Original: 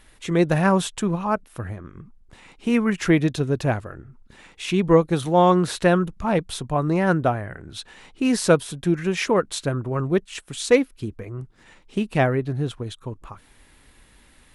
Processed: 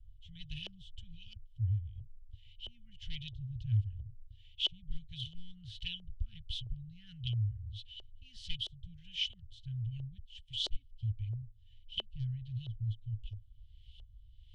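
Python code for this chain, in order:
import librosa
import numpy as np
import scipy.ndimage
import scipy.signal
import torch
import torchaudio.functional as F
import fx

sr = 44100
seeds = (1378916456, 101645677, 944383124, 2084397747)

y = np.minimum(x, 2.0 * 10.0 ** (-11.5 / 20.0) - x)
y = scipy.signal.sosfilt(scipy.signal.cheby1(5, 1.0, [110.0, 3200.0], 'bandstop', fs=sr, output='sos'), y)
y = fx.high_shelf(y, sr, hz=3500.0, db=-10.0)
y = fx.filter_lfo_lowpass(y, sr, shape='saw_up', hz=1.5, low_hz=600.0, high_hz=3200.0, q=2.8)
y = fx.small_body(y, sr, hz=(370.0, 3000.0), ring_ms=25, db=12)
y = F.gain(torch.from_numpy(y), 2.0).numpy()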